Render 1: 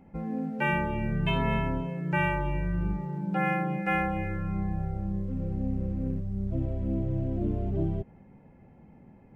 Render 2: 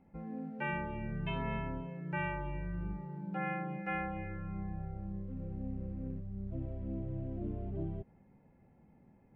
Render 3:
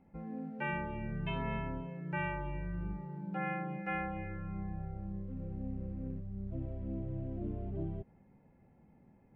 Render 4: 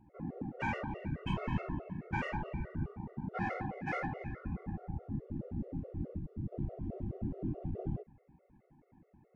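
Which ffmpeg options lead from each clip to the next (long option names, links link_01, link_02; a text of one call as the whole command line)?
ffmpeg -i in.wav -af "lowpass=2200,aemphasis=mode=production:type=75fm,volume=-9dB" out.wav
ffmpeg -i in.wav -af anull out.wav
ffmpeg -i in.wav -af "adynamicsmooth=sensitivity=6:basefreq=3000,afftfilt=real='hypot(re,im)*cos(2*PI*random(0))':imag='hypot(re,im)*sin(2*PI*random(1))':win_size=512:overlap=0.75,afftfilt=real='re*gt(sin(2*PI*4.7*pts/sr)*(1-2*mod(floor(b*sr/1024/370),2)),0)':imag='im*gt(sin(2*PI*4.7*pts/sr)*(1-2*mod(floor(b*sr/1024/370),2)),0)':win_size=1024:overlap=0.75,volume=9.5dB" out.wav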